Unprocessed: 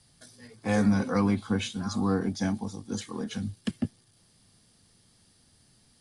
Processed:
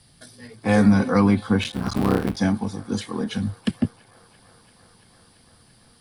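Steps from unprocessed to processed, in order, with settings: 1.61–2.37 s: cycle switcher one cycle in 3, muted; peaking EQ 6.7 kHz -9 dB 0.46 oct; feedback echo behind a band-pass 339 ms, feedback 82%, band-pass 1.2 kHz, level -23 dB; trim +7.5 dB

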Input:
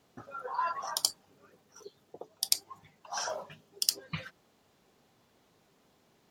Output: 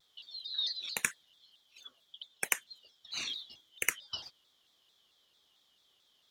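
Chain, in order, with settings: four frequency bands reordered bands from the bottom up 3412; high-pass 79 Hz 6 dB/octave; vibrato with a chosen wave saw down 4.5 Hz, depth 160 cents; trim -3 dB

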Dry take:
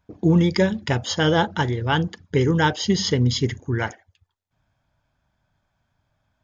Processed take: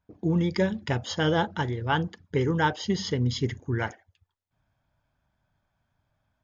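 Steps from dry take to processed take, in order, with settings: 1.79–3.06 s: dynamic bell 1 kHz, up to +4 dB, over -29 dBFS, Q 0.73; level rider gain up to 5 dB; treble shelf 4.7 kHz -5.5 dB; trim -8.5 dB

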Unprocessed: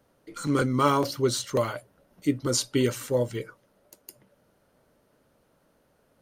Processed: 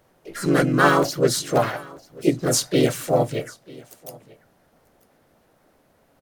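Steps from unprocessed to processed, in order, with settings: harmony voices +3 st -2 dB, +5 st -5 dB, +7 st -13 dB; delay 942 ms -23 dB; trim +2.5 dB

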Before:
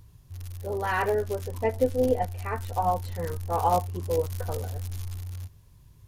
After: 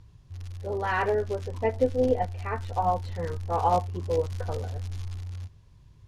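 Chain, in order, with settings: low-pass 5.5 kHz 12 dB/octave

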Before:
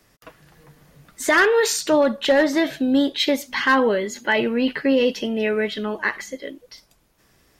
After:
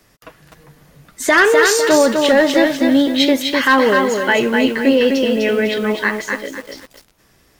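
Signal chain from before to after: bit-crushed delay 252 ms, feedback 35%, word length 7-bit, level -4 dB; trim +4.5 dB

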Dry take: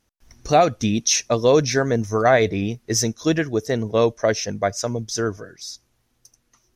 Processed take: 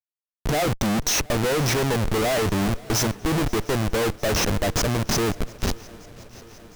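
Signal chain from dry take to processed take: Schmitt trigger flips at -27 dBFS; shuffle delay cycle 708 ms, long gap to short 3:1, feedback 67%, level -23 dB

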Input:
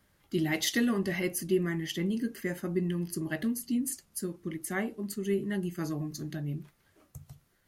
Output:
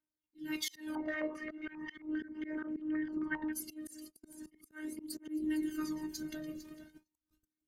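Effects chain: backward echo that repeats 228 ms, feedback 61%, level -13 dB; comb of notches 640 Hz; robot voice 309 Hz; compression 2.5:1, threshold -38 dBFS, peak gain reduction 9 dB; slow attack 178 ms; phaser 0.38 Hz, delay 1.8 ms, feedback 64%; gate -50 dBFS, range -31 dB; slow attack 209 ms; high-pass 160 Hz 6 dB/octave; bass shelf 250 Hz +6.5 dB; 0.95–3.53 s: step-sequenced low-pass 7.5 Hz 860–2500 Hz; trim +2 dB

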